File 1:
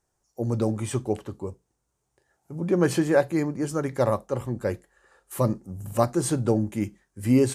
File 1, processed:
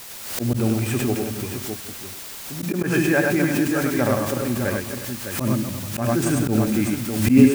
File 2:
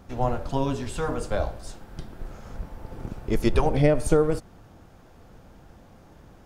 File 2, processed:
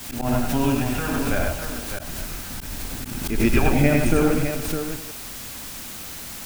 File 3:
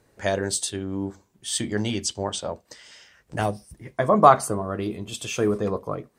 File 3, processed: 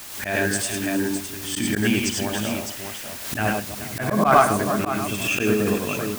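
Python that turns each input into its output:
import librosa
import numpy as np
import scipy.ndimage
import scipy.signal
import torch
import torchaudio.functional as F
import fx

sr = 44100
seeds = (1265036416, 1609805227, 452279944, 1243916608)

p1 = fx.reverse_delay(x, sr, ms=150, wet_db=-11.0)
p2 = fx.graphic_eq_31(p1, sr, hz=(250, 500, 1000, 1600, 2500, 4000), db=(8, -8, -5, 8, 12, -10))
p3 = fx.level_steps(p2, sr, step_db=13)
p4 = p2 + F.gain(torch.from_numpy(p3), -2.0).numpy()
p5 = fx.high_shelf(p4, sr, hz=8600.0, db=-6.5)
p6 = fx.vibrato(p5, sr, rate_hz=0.43, depth_cents=18.0)
p7 = fx.quant_dither(p6, sr, seeds[0], bits=6, dither='triangular')
p8 = p7 + fx.echo_multitap(p7, sr, ms=(74, 76, 100, 431, 608), db=(-19.0, -10.5, -3.0, -17.5, -7.5), dry=0)
p9 = fx.auto_swell(p8, sr, attack_ms=120.0)
p10 = fx.pre_swell(p9, sr, db_per_s=59.0)
y = F.gain(torch.from_numpy(p10), -2.5).numpy()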